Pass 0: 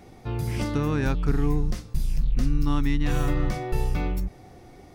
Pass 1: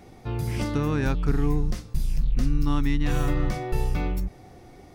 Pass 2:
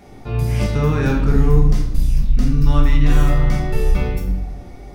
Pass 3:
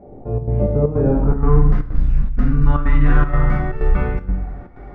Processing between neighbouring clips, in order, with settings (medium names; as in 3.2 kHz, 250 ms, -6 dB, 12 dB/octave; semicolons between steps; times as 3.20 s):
no audible change
reverberation RT60 0.90 s, pre-delay 5 ms, DRR -1.5 dB; trim +2.5 dB
square tremolo 2.1 Hz, depth 65%, duty 80%; low-pass sweep 570 Hz -> 1.5 kHz, 1.09–1.59 s